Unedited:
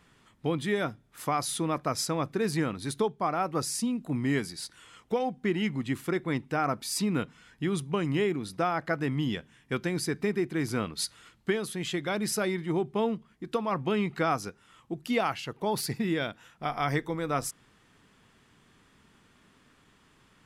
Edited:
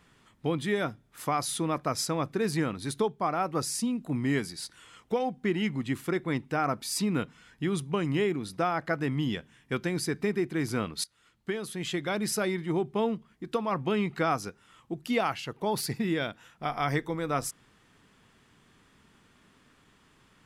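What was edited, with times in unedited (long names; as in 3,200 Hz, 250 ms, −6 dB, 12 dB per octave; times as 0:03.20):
0:11.04–0:11.90: fade in, from −20.5 dB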